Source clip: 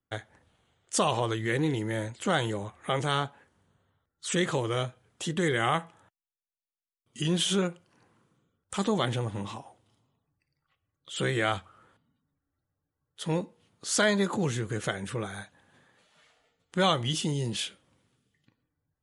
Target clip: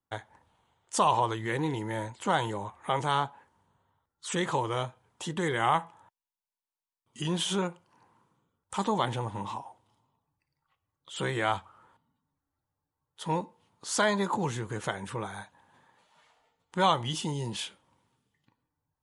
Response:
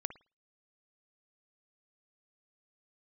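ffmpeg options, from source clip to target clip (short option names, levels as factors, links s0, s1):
-af "equalizer=f=930:w=3.1:g=13.5,volume=0.668"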